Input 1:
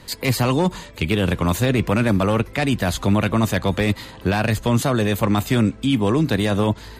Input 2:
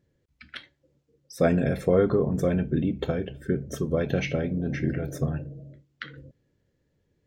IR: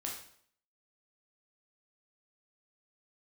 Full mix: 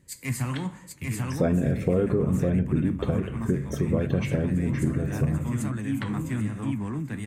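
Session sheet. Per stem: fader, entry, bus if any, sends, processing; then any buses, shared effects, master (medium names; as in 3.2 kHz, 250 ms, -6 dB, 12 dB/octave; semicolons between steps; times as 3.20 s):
-11.0 dB, 0.00 s, muted 2.51–3.04 s, send -9.5 dB, echo send -3.5 dB, graphic EQ 125/250/500/1000/2000/4000/8000 Hz +11/+8/-6/+4/+10/-12/+12 dB; flange 1.2 Hz, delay 5.8 ms, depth 9.3 ms, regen +65%; three bands expanded up and down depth 70%; auto duck -13 dB, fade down 1.85 s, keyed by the second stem
-1.0 dB, 0.00 s, send -10.5 dB, no echo send, bass shelf 420 Hz +10 dB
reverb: on, RT60 0.60 s, pre-delay 7 ms
echo: feedback delay 790 ms, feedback 17%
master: compression 2:1, threshold -26 dBFS, peak gain reduction 9.5 dB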